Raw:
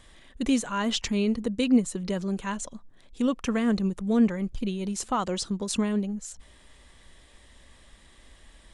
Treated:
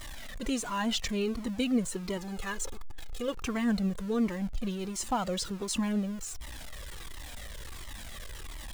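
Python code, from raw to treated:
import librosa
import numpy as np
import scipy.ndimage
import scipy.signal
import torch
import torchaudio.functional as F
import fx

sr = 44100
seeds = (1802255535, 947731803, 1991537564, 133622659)

y = x + 0.5 * 10.0 ** (-35.0 / 20.0) * np.sign(x)
y = fx.comb(y, sr, ms=2.4, depth=0.56, at=(2.17, 3.34))
y = fx.comb_cascade(y, sr, direction='falling', hz=1.4)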